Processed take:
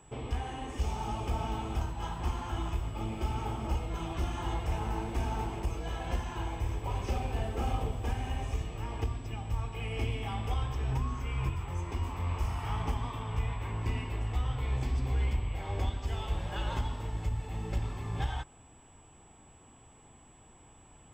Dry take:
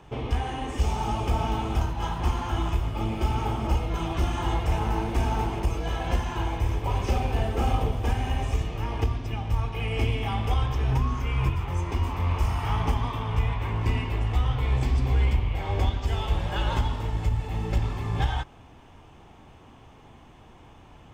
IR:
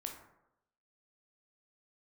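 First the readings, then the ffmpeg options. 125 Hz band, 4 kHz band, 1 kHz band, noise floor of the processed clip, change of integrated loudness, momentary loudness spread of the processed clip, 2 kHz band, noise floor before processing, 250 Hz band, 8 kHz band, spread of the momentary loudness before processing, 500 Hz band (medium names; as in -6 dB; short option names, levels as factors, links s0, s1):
-7.5 dB, -7.5 dB, -7.5 dB, -57 dBFS, -7.5 dB, 4 LU, -7.5 dB, -51 dBFS, -7.5 dB, -4.5 dB, 4 LU, -7.5 dB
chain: -af "aeval=exprs='val(0)+0.002*sin(2*PI*7800*n/s)':c=same,volume=0.422"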